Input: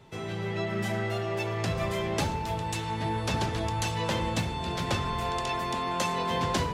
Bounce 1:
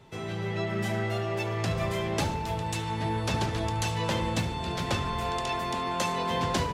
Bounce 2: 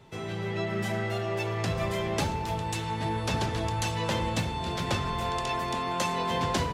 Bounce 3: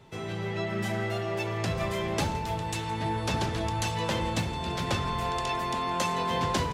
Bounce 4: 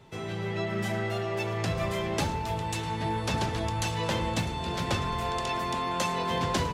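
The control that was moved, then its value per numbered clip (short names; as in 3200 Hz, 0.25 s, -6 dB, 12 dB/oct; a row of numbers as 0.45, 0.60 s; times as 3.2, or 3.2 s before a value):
feedback echo, time: 73, 299, 167, 652 ms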